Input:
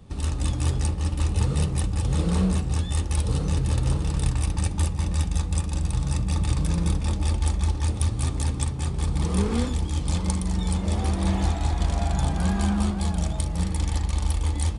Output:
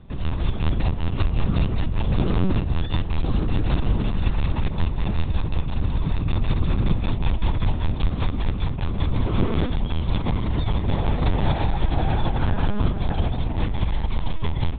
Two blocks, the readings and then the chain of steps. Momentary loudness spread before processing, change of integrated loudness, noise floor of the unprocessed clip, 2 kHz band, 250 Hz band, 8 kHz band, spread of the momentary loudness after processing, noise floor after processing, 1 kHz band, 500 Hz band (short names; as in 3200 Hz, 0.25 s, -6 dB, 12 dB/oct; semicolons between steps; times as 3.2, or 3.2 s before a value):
3 LU, +0.5 dB, -30 dBFS, +3.5 dB, +1.0 dB, under -40 dB, 4 LU, -27 dBFS, +3.0 dB, +3.5 dB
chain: notches 60/120/180/240/300/360/420/480/540 Hz; LPC vocoder at 8 kHz pitch kept; gain +3.5 dB